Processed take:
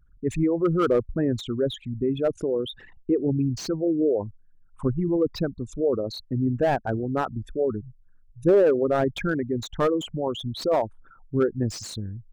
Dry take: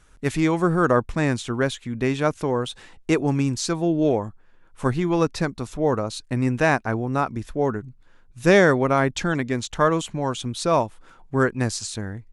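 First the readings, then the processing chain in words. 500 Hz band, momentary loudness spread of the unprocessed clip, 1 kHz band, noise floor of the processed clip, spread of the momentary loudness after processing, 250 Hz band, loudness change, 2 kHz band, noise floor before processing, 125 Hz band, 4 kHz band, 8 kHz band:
−0.5 dB, 8 LU, −7.0 dB, −56 dBFS, 8 LU, −2.0 dB, −2.5 dB, −11.5 dB, −53 dBFS, −4.0 dB, −4.0 dB, can't be measured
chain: spectral envelope exaggerated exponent 3
slew-rate limiting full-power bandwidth 130 Hz
level −2 dB

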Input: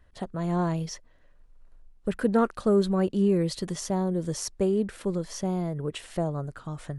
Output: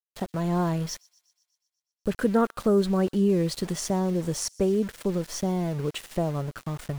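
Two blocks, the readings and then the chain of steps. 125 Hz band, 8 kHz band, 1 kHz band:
+1.5 dB, +3.0 dB, +1.0 dB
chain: in parallel at −0.5 dB: downward compressor 6 to 1, threshold −31 dBFS, peak gain reduction 13 dB
on the sum: centre clipping without the shift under −36.5 dBFS
delay with a high-pass on its return 122 ms, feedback 64%, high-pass 3,600 Hz, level −23.5 dB
level −1.5 dB

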